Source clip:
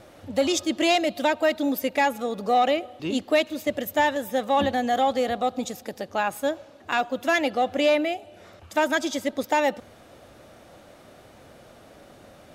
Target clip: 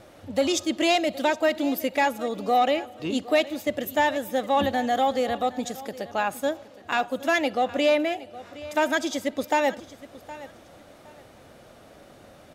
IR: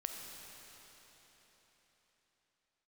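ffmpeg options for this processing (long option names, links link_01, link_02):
-filter_complex "[0:a]aecho=1:1:766|1532:0.133|0.0307,asplit=2[link_01][link_02];[1:a]atrim=start_sample=2205,atrim=end_sample=3087[link_03];[link_02][link_03]afir=irnorm=-1:irlink=0,volume=-10dB[link_04];[link_01][link_04]amix=inputs=2:normalize=0,volume=-2.5dB"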